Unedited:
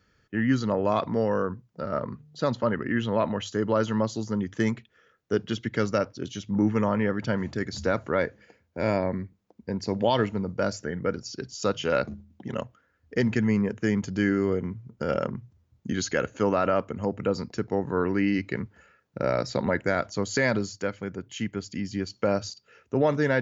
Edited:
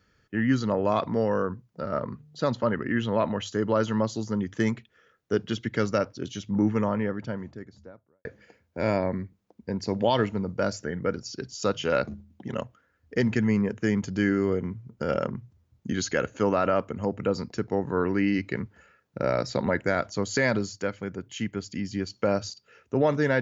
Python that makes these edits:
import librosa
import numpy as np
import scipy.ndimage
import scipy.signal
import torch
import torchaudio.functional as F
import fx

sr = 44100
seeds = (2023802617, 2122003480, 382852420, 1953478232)

y = fx.studio_fade_out(x, sr, start_s=6.45, length_s=1.8)